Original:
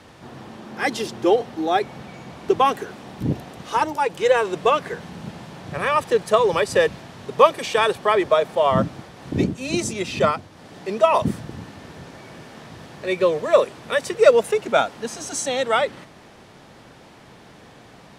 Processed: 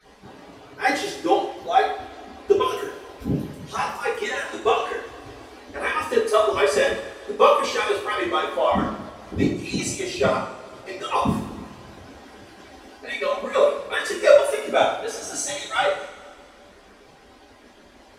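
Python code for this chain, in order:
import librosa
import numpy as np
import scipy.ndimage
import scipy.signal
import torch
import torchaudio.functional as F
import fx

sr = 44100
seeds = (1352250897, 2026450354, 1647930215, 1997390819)

y = fx.hpss_only(x, sr, part='percussive')
y = fx.rev_double_slope(y, sr, seeds[0], early_s=0.55, late_s=2.2, knee_db=-18, drr_db=-8.5)
y = y * librosa.db_to_amplitude(-7.5)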